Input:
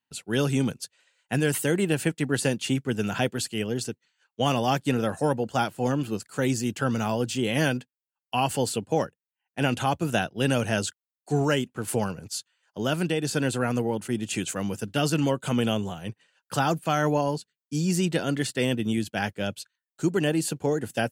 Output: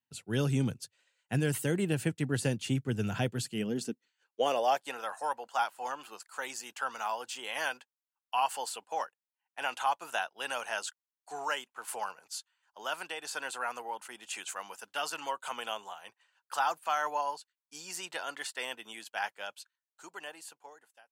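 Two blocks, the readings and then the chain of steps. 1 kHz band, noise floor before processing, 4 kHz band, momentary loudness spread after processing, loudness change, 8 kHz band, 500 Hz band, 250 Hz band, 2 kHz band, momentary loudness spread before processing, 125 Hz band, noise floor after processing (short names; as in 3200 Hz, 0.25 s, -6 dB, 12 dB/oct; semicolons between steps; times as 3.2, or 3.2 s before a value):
-3.0 dB, under -85 dBFS, -7.0 dB, 15 LU, -8.0 dB, -7.5 dB, -10.5 dB, -12.0 dB, -5.5 dB, 9 LU, -9.0 dB, under -85 dBFS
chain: ending faded out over 1.86 s; high-pass sweep 100 Hz -> 940 Hz, 3.26–5.01; gain -7.5 dB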